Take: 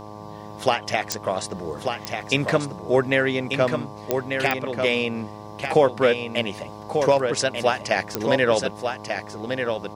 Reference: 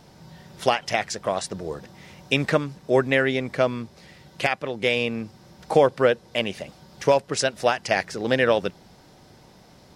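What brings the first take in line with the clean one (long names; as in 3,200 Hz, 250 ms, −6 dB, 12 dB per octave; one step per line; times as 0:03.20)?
click removal
hum removal 105 Hz, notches 11
echo removal 1,191 ms −6 dB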